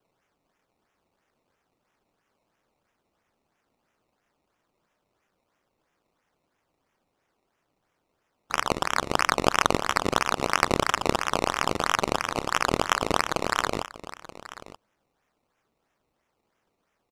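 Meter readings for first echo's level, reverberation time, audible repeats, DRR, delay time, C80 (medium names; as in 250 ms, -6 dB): -16.5 dB, no reverb, 1, no reverb, 930 ms, no reverb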